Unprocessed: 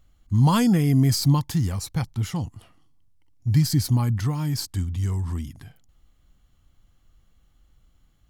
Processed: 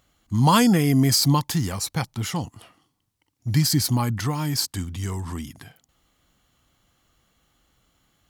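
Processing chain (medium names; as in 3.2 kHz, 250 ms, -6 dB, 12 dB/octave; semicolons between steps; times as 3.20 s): high-pass 340 Hz 6 dB/octave; trim +6.5 dB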